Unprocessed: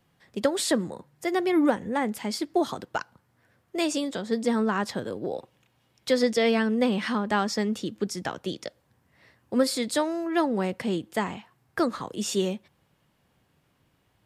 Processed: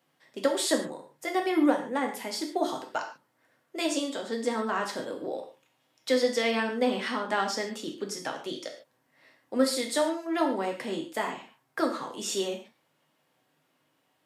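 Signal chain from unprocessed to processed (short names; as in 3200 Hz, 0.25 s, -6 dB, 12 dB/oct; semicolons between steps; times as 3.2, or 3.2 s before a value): HPF 300 Hz 12 dB/oct; non-linear reverb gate 0.17 s falling, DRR 2 dB; gain -3 dB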